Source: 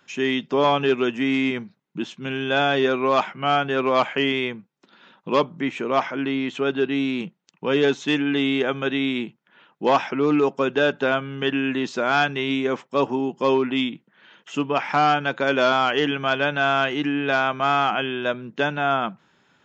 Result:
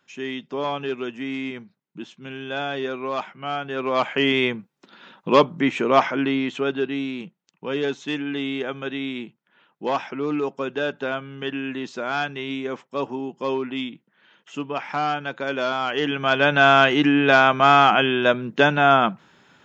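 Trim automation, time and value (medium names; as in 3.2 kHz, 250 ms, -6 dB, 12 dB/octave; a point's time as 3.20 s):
3.60 s -7.5 dB
4.44 s +4.5 dB
6.04 s +4.5 dB
7.19 s -5.5 dB
15.78 s -5.5 dB
16.58 s +6 dB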